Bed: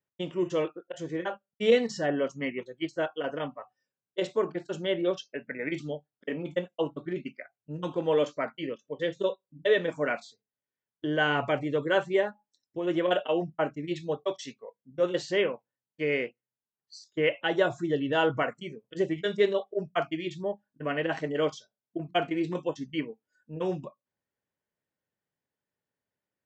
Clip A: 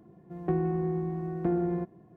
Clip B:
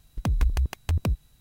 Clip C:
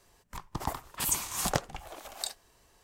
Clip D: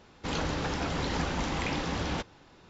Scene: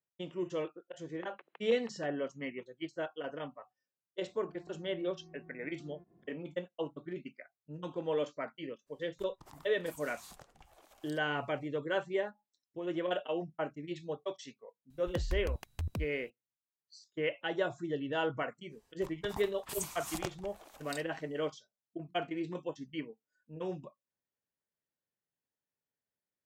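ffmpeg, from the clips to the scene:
-filter_complex "[2:a]asplit=2[s0][s1];[3:a]asplit=2[s2][s3];[0:a]volume=0.398[s4];[s0]highpass=f=310:t=q:w=0.5412,highpass=f=310:t=q:w=1.307,lowpass=f=2900:t=q:w=0.5176,lowpass=f=2900:t=q:w=0.7071,lowpass=f=2900:t=q:w=1.932,afreqshift=92[s5];[1:a]acompressor=threshold=0.00794:ratio=6:attack=3.2:release=140:knee=1:detection=peak[s6];[s2]acompressor=threshold=0.0224:ratio=6:attack=3.2:release=140:knee=1:detection=peak[s7];[s5]atrim=end=1.4,asetpts=PTS-STARTPTS,volume=0.178,afade=t=in:d=0.004:c=hsin,afade=t=out:st=1.396:d=0.004:c=hsin,adelay=980[s8];[s6]atrim=end=2.16,asetpts=PTS-STARTPTS,volume=0.266,afade=t=in:d=0.004:c=hsin,afade=t=out:st=2.156:d=0.004:c=hsin,adelay=4190[s9];[s7]atrim=end=2.83,asetpts=PTS-STARTPTS,volume=0.15,afade=t=in:d=0.02,afade=t=out:st=2.81:d=0.02,adelay=8860[s10];[s1]atrim=end=1.4,asetpts=PTS-STARTPTS,volume=0.251,afade=t=in:d=0.004:c=hsin,afade=t=out:st=1.396:d=0.004:c=hsin,adelay=14900[s11];[s3]atrim=end=2.83,asetpts=PTS-STARTPTS,volume=0.299,afade=t=in:d=0.05,afade=t=out:st=2.78:d=0.05,adelay=18690[s12];[s4][s8][s9][s10][s11][s12]amix=inputs=6:normalize=0"

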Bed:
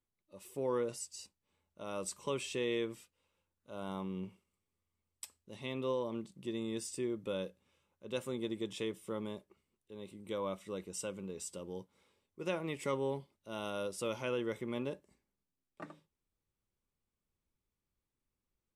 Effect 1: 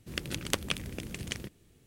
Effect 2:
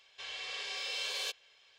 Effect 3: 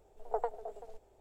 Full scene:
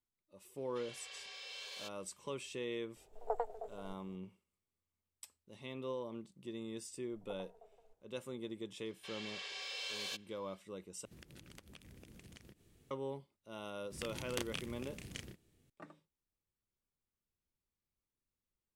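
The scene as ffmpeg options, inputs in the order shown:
-filter_complex "[2:a]asplit=2[s0][s1];[3:a]asplit=2[s2][s3];[1:a]asplit=2[s4][s5];[0:a]volume=0.501[s6];[s3]bandreject=f=94.24:t=h:w=4,bandreject=f=188.48:t=h:w=4,bandreject=f=282.72:t=h:w=4,bandreject=f=376.96:t=h:w=4,bandreject=f=471.2:t=h:w=4,bandreject=f=565.44:t=h:w=4,bandreject=f=659.68:t=h:w=4,bandreject=f=753.92:t=h:w=4,bandreject=f=848.16:t=h:w=4,bandreject=f=942.4:t=h:w=4,bandreject=f=1036.64:t=h:w=4,bandreject=f=1130.88:t=h:w=4,bandreject=f=1225.12:t=h:w=4,bandreject=f=1319.36:t=h:w=4,bandreject=f=1413.6:t=h:w=4,bandreject=f=1507.84:t=h:w=4,bandreject=f=1602.08:t=h:w=4,bandreject=f=1696.32:t=h:w=4,bandreject=f=1790.56:t=h:w=4,bandreject=f=1884.8:t=h:w=4,bandreject=f=1979.04:t=h:w=4,bandreject=f=2073.28:t=h:w=4,bandreject=f=2167.52:t=h:w=4,bandreject=f=2261.76:t=h:w=4,bandreject=f=2356:t=h:w=4,bandreject=f=2450.24:t=h:w=4,bandreject=f=2544.48:t=h:w=4,bandreject=f=2638.72:t=h:w=4,bandreject=f=2732.96:t=h:w=4,bandreject=f=2827.2:t=h:w=4,bandreject=f=2921.44:t=h:w=4,bandreject=f=3015.68:t=h:w=4,bandreject=f=3109.92:t=h:w=4[s7];[s4]acompressor=threshold=0.00282:ratio=4:attack=6:release=87:knee=1:detection=rms[s8];[s5]asplit=2[s9][s10];[s10]adelay=32,volume=0.668[s11];[s9][s11]amix=inputs=2:normalize=0[s12];[s6]asplit=2[s13][s14];[s13]atrim=end=11.054[s15];[s8]atrim=end=1.86,asetpts=PTS-STARTPTS,volume=0.562[s16];[s14]atrim=start=12.906[s17];[s0]atrim=end=1.78,asetpts=PTS-STARTPTS,volume=0.282,afade=t=in:d=0.004:c=hsin,afade=t=out:st=1.776:d=0.004:c=hsin,adelay=570[s18];[s2]atrim=end=1.2,asetpts=PTS-STARTPTS,volume=0.708,afade=t=in:d=0.004:c=hsin,afade=t=out:st=1.196:d=0.004:c=hsin,adelay=2960[s19];[s7]atrim=end=1.2,asetpts=PTS-STARTPTS,volume=0.133,afade=t=in:d=0.004:c=hsin,afade=t=out:st=1.196:d=0.004:c=hsin,adelay=6960[s20];[s1]atrim=end=1.78,asetpts=PTS-STARTPTS,volume=0.531,afade=t=in:d=0.004:c=hsin,afade=t=out:st=1.776:d=0.004:c=hsin,adelay=8850[s21];[s12]atrim=end=1.86,asetpts=PTS-STARTPTS,volume=0.266,afade=t=in:d=0.004:c=hsin,afade=t=out:st=1.856:d=0.004:c=hsin,adelay=13840[s22];[s15][s16]acrossfade=d=0.004:c1=hsin:c2=hsin[s23];[s23][s17]acrossfade=d=0.004:c1=hsin:c2=hsin[s24];[s24][s18][s19][s20][s21][s22]amix=inputs=6:normalize=0"

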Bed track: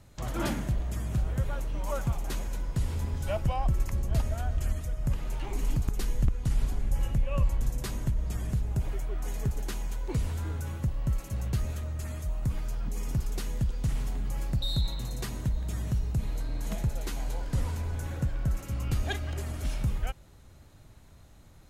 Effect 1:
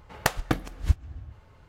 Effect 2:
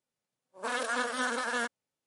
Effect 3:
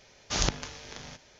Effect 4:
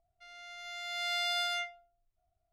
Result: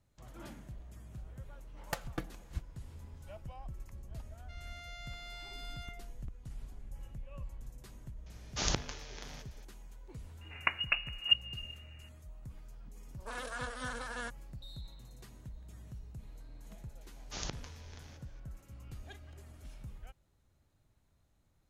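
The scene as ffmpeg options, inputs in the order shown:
-filter_complex "[1:a]asplit=2[s0][s1];[3:a]asplit=2[s2][s3];[0:a]volume=0.119[s4];[s0]aecho=1:1:5.9:0.44[s5];[4:a]acompressor=threshold=0.00631:ratio=6:attack=3.2:release=140:knee=1:detection=peak[s6];[s1]lowpass=f=2500:t=q:w=0.5098,lowpass=f=2500:t=q:w=0.6013,lowpass=f=2500:t=q:w=0.9,lowpass=f=2500:t=q:w=2.563,afreqshift=-2900[s7];[s5]atrim=end=1.68,asetpts=PTS-STARTPTS,volume=0.188,afade=t=in:d=0.004:c=hsin,afade=t=out:st=1.676:d=0.004:c=hsin,adelay=1670[s8];[s6]atrim=end=2.52,asetpts=PTS-STARTPTS,volume=0.794,afade=t=in:d=0.004:c=hsin,afade=t=out:st=2.516:d=0.004:c=hsin,adelay=4280[s9];[s2]atrim=end=1.39,asetpts=PTS-STARTPTS,volume=0.562,afade=t=in:d=0.004:c=hsin,afade=t=out:st=1.386:d=0.004:c=hsin,adelay=364266S[s10];[s7]atrim=end=1.68,asetpts=PTS-STARTPTS,volume=0.501,afade=t=in:d=0.004:c=hsin,afade=t=out:st=1.676:d=0.004:c=hsin,adelay=10410[s11];[2:a]atrim=end=2.06,asetpts=PTS-STARTPTS,volume=0.335,afade=t=in:d=0.004:c=hsin,afade=t=out:st=2.056:d=0.004:c=hsin,adelay=12630[s12];[s3]atrim=end=1.39,asetpts=PTS-STARTPTS,volume=0.224,afade=t=in:d=0.004:c=hsin,afade=t=out:st=1.386:d=0.004:c=hsin,adelay=17010[s13];[s4][s8][s9][s10][s11][s12][s13]amix=inputs=7:normalize=0"

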